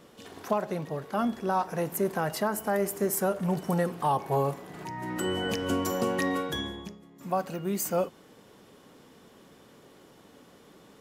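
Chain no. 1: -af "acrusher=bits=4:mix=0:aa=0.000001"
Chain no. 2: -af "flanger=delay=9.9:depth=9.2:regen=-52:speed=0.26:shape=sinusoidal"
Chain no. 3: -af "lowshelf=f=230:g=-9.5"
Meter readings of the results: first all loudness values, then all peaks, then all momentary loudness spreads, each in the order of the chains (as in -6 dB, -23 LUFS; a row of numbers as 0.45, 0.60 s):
-28.5, -33.5, -31.5 LUFS; -17.5, -19.0, -17.0 dBFS; 6, 10, 10 LU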